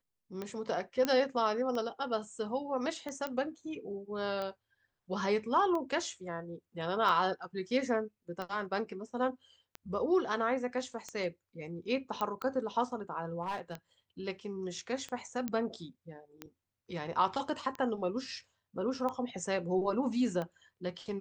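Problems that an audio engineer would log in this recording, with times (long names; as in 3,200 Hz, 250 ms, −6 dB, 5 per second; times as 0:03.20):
scratch tick 45 rpm −25 dBFS
0:01.05: click −16 dBFS
0:03.27: click −22 dBFS
0:12.21: click −20 dBFS
0:13.42–0:13.74: clipping −31.5 dBFS
0:15.48: click −21 dBFS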